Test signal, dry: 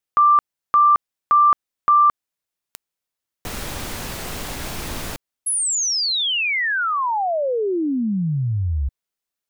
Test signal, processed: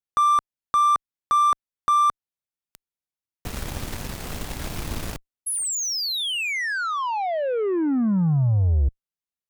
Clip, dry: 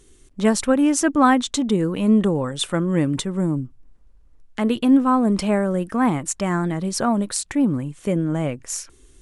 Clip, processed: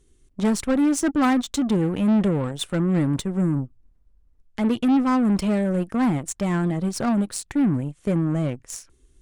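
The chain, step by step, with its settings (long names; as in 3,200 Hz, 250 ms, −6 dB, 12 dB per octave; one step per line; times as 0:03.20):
low-shelf EQ 260 Hz +8 dB
soft clipping −17 dBFS
harmonic generator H 2 −31 dB, 3 −12 dB, 4 −35 dB, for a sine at −17 dBFS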